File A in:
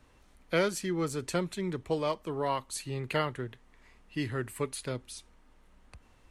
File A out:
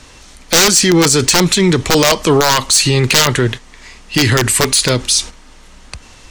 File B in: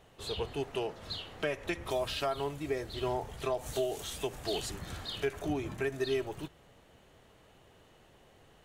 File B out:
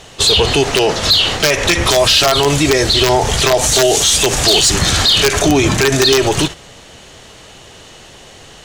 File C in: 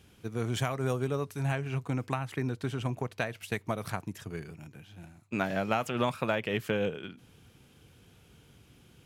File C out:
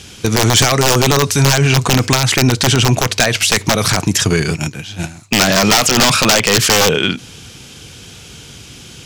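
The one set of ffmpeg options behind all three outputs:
ffmpeg -i in.wav -af "aeval=exprs='(mod(14.1*val(0)+1,2)-1)/14.1':channel_layout=same,equalizer=frequency=6200:width_type=o:width=2.1:gain=15,agate=range=-9dB:threshold=-45dB:ratio=16:detection=peak,highshelf=frequency=12000:gain=-11.5,asoftclip=type=tanh:threshold=-22.5dB,alimiter=level_in=31dB:limit=-1dB:release=50:level=0:latency=1,volume=-3dB" out.wav

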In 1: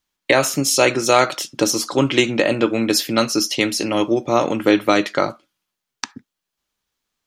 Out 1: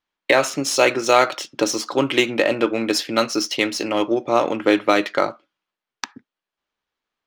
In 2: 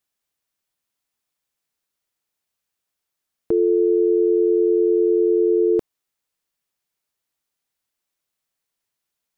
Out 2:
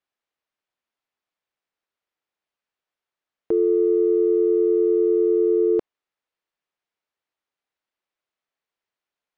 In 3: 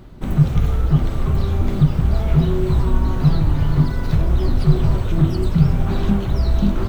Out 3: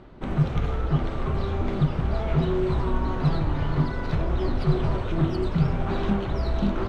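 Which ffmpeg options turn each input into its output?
ffmpeg -i in.wav -af "adynamicsmooth=sensitivity=3:basefreq=4200,bass=frequency=250:gain=-9,treble=frequency=4000:gain=-3" out.wav

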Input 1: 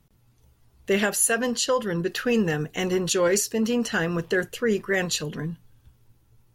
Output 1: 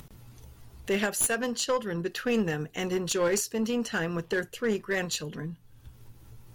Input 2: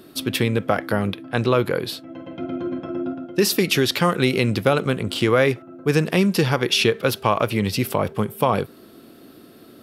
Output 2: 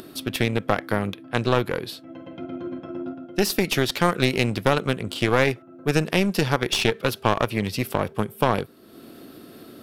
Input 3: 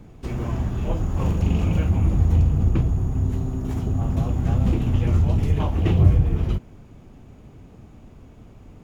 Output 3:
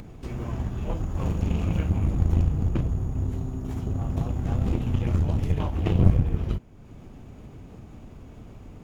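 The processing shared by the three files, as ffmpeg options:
ffmpeg -i in.wav -af "acompressor=mode=upward:threshold=-28dB:ratio=2.5,aeval=exprs='0.794*(cos(1*acos(clip(val(0)/0.794,-1,1)))-cos(1*PI/2))+0.0562*(cos(7*acos(clip(val(0)/0.794,-1,1)))-cos(7*PI/2))':channel_layout=same,aeval=exprs='clip(val(0),-1,0.0794)':channel_layout=same" out.wav

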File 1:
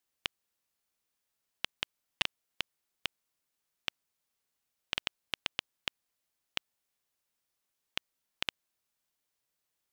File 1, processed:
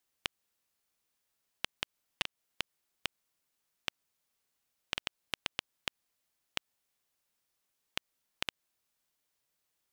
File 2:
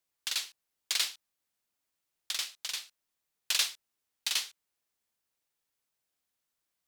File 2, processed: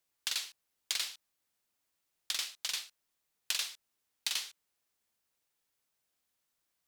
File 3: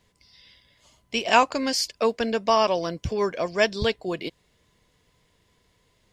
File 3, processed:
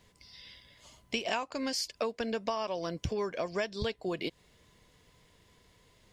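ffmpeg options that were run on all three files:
ffmpeg -i in.wav -af "acompressor=threshold=-32dB:ratio=10,volume=2dB" out.wav

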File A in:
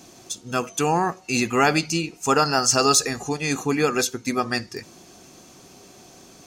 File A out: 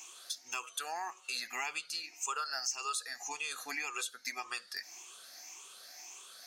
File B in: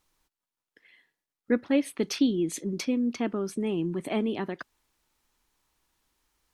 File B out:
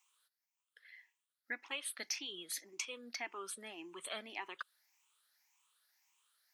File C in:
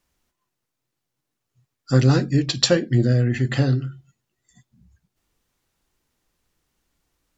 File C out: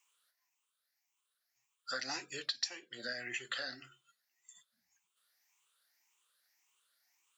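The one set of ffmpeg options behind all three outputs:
ffmpeg -i in.wav -af "afftfilt=real='re*pow(10,13/40*sin(2*PI*(0.7*log(max(b,1)*sr/1024/100)/log(2)-(1.8)*(pts-256)/sr)))':imag='im*pow(10,13/40*sin(2*PI*(0.7*log(max(b,1)*sr/1024/100)/log(2)-(1.8)*(pts-256)/sr)))':win_size=1024:overlap=0.75,highpass=1300,acompressor=threshold=-35dB:ratio=4,volume=-2dB" out.wav

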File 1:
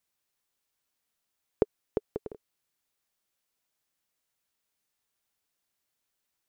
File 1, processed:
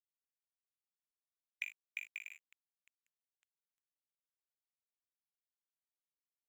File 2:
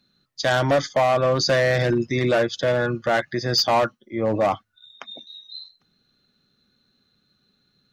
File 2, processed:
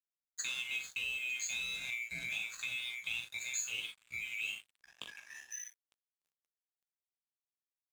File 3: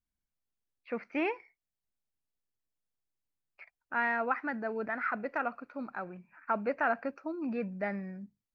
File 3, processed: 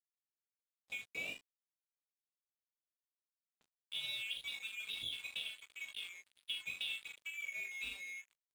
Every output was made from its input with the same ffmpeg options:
ffmpeg -i in.wav -filter_complex "[0:a]afftfilt=real='real(if(lt(b,920),b+92*(1-2*mod(floor(b/92),2)),b),0)':imag='imag(if(lt(b,920),b+92*(1-2*mod(floor(b/92),2)),b),0)':win_size=2048:overlap=0.75,bandreject=frequency=380:width=12,acrossover=split=180|3000[link_01][link_02][link_03];[link_02]acompressor=threshold=-53dB:ratio=1.5[link_04];[link_01][link_04][link_03]amix=inputs=3:normalize=0,asplit=2[link_05][link_06];[link_06]adelay=18,volume=-3.5dB[link_07];[link_05][link_07]amix=inputs=2:normalize=0,asplit=2[link_08][link_09];[link_09]aecho=0:1:14|42|57|79:0.133|0.501|0.2|0.188[link_10];[link_08][link_10]amix=inputs=2:normalize=0,acompressor=threshold=-33dB:ratio=4,highpass=frequency=140:poles=1,lowshelf=frequency=200:gain=-5,asplit=2[link_11][link_12];[link_12]aecho=0:1:905|1810|2715|3620:0.0944|0.0519|0.0286|0.0157[link_13];[link_11][link_13]amix=inputs=2:normalize=0,aeval=exprs='sgn(val(0))*max(abs(val(0))-0.00473,0)':channel_layout=same,volume=-4dB" out.wav

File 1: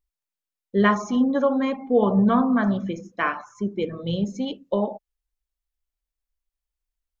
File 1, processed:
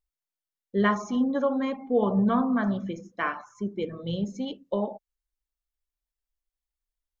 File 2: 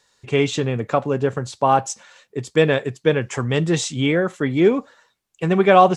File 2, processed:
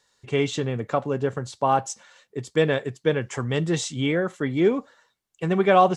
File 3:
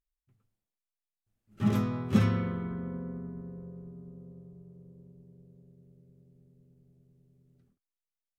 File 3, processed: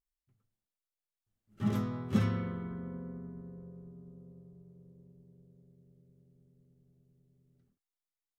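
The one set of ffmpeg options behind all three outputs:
ffmpeg -i in.wav -af "bandreject=frequency=2500:width=18,volume=-4.5dB" out.wav

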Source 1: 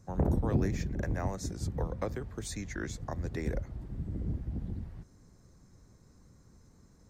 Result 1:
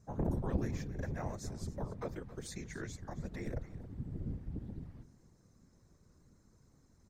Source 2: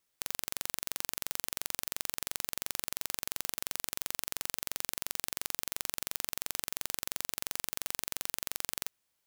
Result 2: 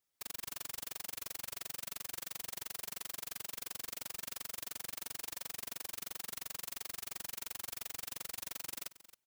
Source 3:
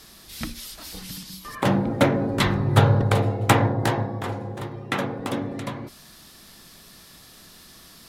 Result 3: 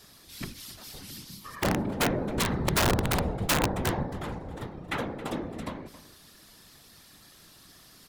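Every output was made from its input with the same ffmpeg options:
ffmpeg -i in.wav -af "afftfilt=real='hypot(re,im)*cos(2*PI*random(0))':imag='hypot(re,im)*sin(2*PI*random(1))':win_size=512:overlap=0.75,aecho=1:1:271:0.158,aeval=exprs='(mod(7.5*val(0)+1,2)-1)/7.5':channel_layout=same" out.wav

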